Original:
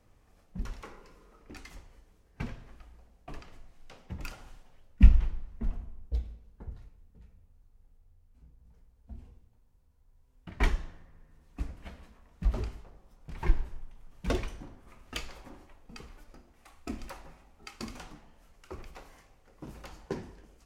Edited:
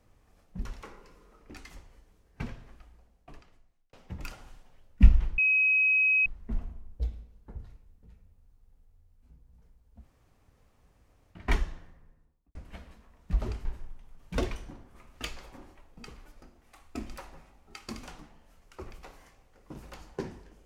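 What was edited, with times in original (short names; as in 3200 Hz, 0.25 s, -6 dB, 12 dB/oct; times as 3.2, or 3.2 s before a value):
2.63–3.93 fade out
5.38 add tone 2540 Hz -20.5 dBFS 0.88 s
9.12–10.48 room tone, crossfade 0.10 s
10.99–11.67 studio fade out
12.77–13.57 cut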